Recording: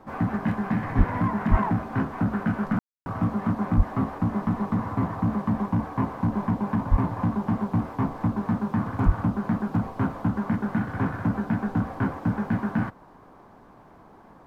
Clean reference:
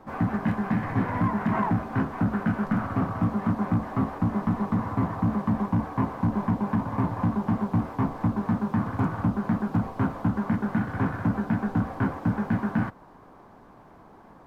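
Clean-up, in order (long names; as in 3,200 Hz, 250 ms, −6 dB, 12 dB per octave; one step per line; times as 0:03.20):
high-pass at the plosives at 0:00.97/0:01.50/0:03.76/0:06.90/0:09.05
ambience match 0:02.79–0:03.06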